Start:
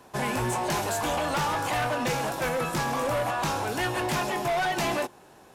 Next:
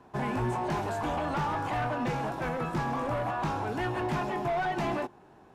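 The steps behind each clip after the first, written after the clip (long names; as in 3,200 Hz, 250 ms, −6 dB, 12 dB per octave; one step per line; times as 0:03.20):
low-pass filter 1,000 Hz 6 dB per octave
parametric band 530 Hz −6.5 dB 0.35 octaves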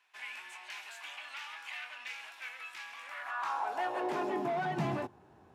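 high-pass filter sweep 2,400 Hz → 71 Hz, 0:03.00–0:05.25
level −5 dB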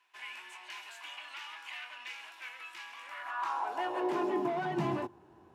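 hollow resonant body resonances 340/1,000/2,900 Hz, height 9 dB, ringing for 55 ms
level −1.5 dB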